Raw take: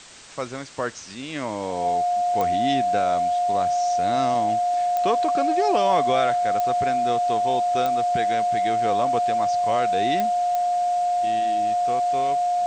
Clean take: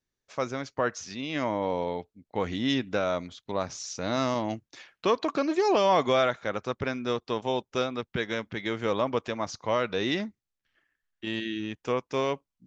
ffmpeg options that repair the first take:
-af "adeclick=t=4,bandreject=f=710:w=30,afwtdn=0.0079,asetnsamples=n=441:p=0,asendcmd='10.56 volume volume 4.5dB',volume=0dB"

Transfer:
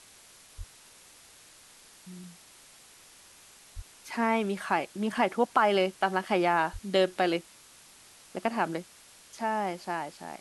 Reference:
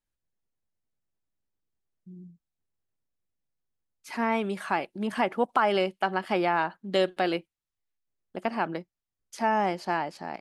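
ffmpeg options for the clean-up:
-filter_complex "[0:a]asplit=3[a][b][c];[a]afade=t=out:st=0.57:d=0.02[d];[b]highpass=f=140:w=0.5412,highpass=f=140:w=1.3066,afade=t=in:st=0.57:d=0.02,afade=t=out:st=0.69:d=0.02[e];[c]afade=t=in:st=0.69:d=0.02[f];[d][e][f]amix=inputs=3:normalize=0,asplit=3[g][h][i];[g]afade=t=out:st=3.75:d=0.02[j];[h]highpass=f=140:w=0.5412,highpass=f=140:w=1.3066,afade=t=in:st=3.75:d=0.02,afade=t=out:st=3.87:d=0.02[k];[i]afade=t=in:st=3.87:d=0.02[l];[j][k][l]amix=inputs=3:normalize=0,asplit=3[m][n][o];[m]afade=t=out:st=6.72:d=0.02[p];[n]highpass=f=140:w=0.5412,highpass=f=140:w=1.3066,afade=t=in:st=6.72:d=0.02,afade=t=out:st=6.84:d=0.02[q];[o]afade=t=in:st=6.84:d=0.02[r];[p][q][r]amix=inputs=3:normalize=0,afwtdn=0.0025,asetnsamples=n=441:p=0,asendcmd='9.18 volume volume 5dB',volume=0dB"

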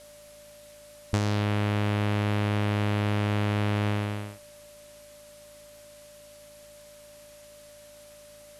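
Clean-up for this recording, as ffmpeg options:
-af "adeclick=t=4,bandreject=f=53.7:t=h:w=4,bandreject=f=107.4:t=h:w=4,bandreject=f=161.1:t=h:w=4,bandreject=f=214.8:t=h:w=4,bandreject=f=268.5:t=h:w=4,bandreject=f=590:w=30,afwtdn=0.0022"

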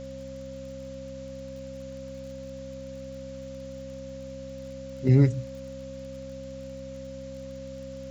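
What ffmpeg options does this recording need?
-af "adeclick=t=4,bandreject=f=65.8:t=h:w=4,bandreject=f=131.6:t=h:w=4,bandreject=f=197.4:t=h:w=4,bandreject=f=263.2:t=h:w=4,bandreject=f=540:w=30,afwtdn=0.0022"

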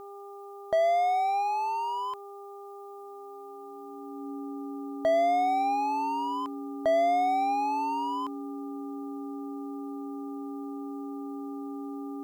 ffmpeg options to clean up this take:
-af "bandreject=f=400.8:t=h:w=4,bandreject=f=801.6:t=h:w=4,bandreject=f=1.2024k:t=h:w=4,bandreject=f=280:w=30,agate=range=-21dB:threshold=-36dB"

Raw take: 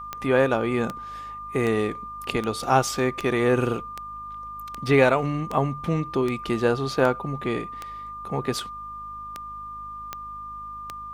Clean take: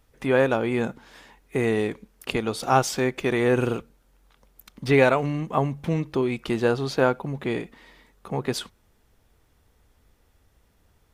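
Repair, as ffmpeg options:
-af "adeclick=t=4,bandreject=f=51.9:t=h:w=4,bandreject=f=103.8:t=h:w=4,bandreject=f=155.7:t=h:w=4,bandreject=f=207.6:t=h:w=4,bandreject=f=259.5:t=h:w=4,bandreject=f=1.2k:w=30"

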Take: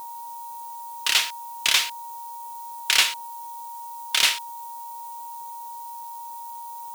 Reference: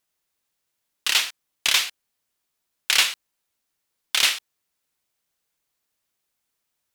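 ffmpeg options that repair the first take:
-af "bandreject=f=940:w=30,afftdn=nr=30:nf=-37"

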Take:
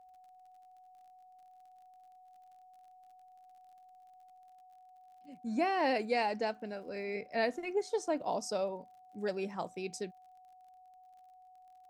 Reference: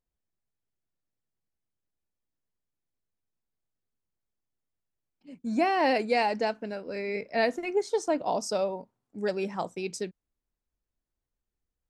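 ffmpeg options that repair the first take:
-af "adeclick=t=4,bandreject=f=740:w=30,asetnsamples=n=441:p=0,asendcmd='4.49 volume volume 6dB',volume=0dB"

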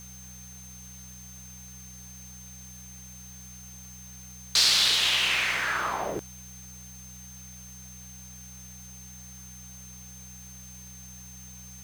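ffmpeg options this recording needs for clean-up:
-af "bandreject=f=62.5:t=h:w=4,bandreject=f=125:t=h:w=4,bandreject=f=187.5:t=h:w=4,bandreject=f=6.3k:w=30,afwtdn=0.0022"

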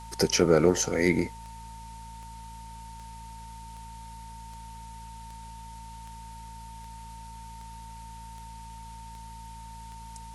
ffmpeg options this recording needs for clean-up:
-af "adeclick=t=4,bandreject=f=55.6:t=h:w=4,bandreject=f=111.2:t=h:w=4,bandreject=f=166.8:t=h:w=4,bandreject=f=222.4:t=h:w=4,bandreject=f=910:w=30,afftdn=nr=30:nf=-43"

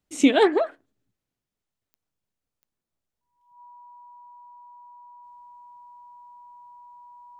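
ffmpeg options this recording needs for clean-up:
-af "adeclick=t=4,bandreject=f=970:w=30"

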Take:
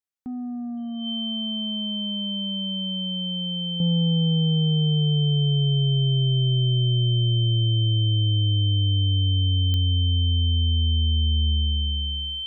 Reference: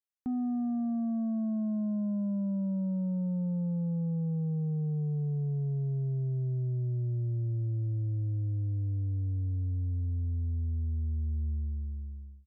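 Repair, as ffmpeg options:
-af "adeclick=t=4,bandreject=f=3.1k:w=30,asetnsamples=n=441:p=0,asendcmd='3.8 volume volume -10dB',volume=0dB"

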